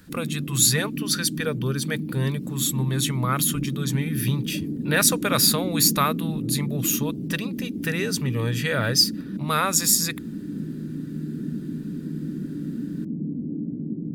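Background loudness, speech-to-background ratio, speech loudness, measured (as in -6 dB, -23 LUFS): -31.0 LUFS, 8.0 dB, -23.0 LUFS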